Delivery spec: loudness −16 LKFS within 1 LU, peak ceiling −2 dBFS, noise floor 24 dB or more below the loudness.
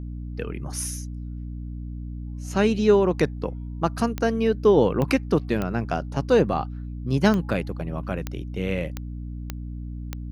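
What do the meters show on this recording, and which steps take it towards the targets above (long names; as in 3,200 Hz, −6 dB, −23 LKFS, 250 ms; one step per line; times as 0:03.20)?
number of clicks 8; mains hum 60 Hz; hum harmonics up to 300 Hz; level of the hum −31 dBFS; integrated loudness −24.0 LKFS; sample peak −6.0 dBFS; target loudness −16.0 LKFS
→ click removal
hum removal 60 Hz, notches 5
level +8 dB
brickwall limiter −2 dBFS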